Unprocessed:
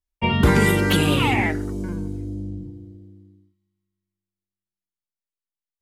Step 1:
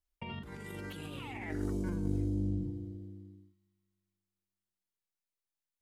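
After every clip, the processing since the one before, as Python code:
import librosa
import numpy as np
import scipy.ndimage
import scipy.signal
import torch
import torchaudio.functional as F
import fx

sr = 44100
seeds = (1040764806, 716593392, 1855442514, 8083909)

y = fx.over_compress(x, sr, threshold_db=-30.0, ratio=-1.0)
y = y * 10.0 ** (-8.5 / 20.0)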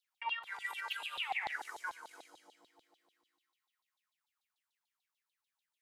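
y = scipy.signal.sosfilt(scipy.signal.cheby1(2, 1.0, 630.0, 'highpass', fs=sr, output='sos'), x)
y = fx.rev_schroeder(y, sr, rt60_s=1.4, comb_ms=25, drr_db=15.0)
y = fx.filter_lfo_highpass(y, sr, shape='saw_down', hz=6.8, low_hz=750.0, high_hz=4000.0, q=7.8)
y = y * 10.0 ** (1.0 / 20.0)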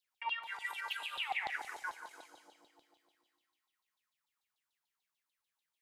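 y = fx.echo_feedback(x, sr, ms=177, feedback_pct=34, wet_db=-13)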